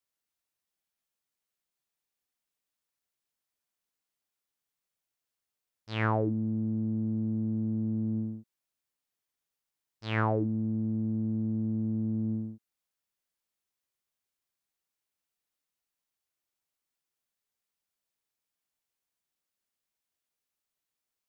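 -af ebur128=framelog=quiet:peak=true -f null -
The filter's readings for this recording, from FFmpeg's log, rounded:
Integrated loudness:
  I:         -31.2 LUFS
  Threshold: -41.6 LUFS
Loudness range:
  LRA:         6.5 LU
  Threshold: -53.8 LUFS
  LRA low:   -38.2 LUFS
  LRA high:  -31.7 LUFS
True peak:
  Peak:      -14.7 dBFS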